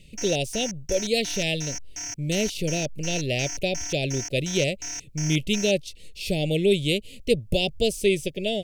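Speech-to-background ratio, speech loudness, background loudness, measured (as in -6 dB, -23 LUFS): 7.5 dB, -26.0 LUFS, -33.5 LUFS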